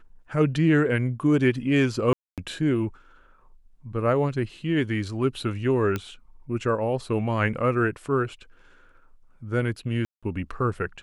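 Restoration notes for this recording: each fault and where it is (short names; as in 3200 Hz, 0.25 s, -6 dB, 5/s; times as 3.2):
2.13–2.38 gap 0.247 s
5.96 pop -14 dBFS
10.05–10.23 gap 0.176 s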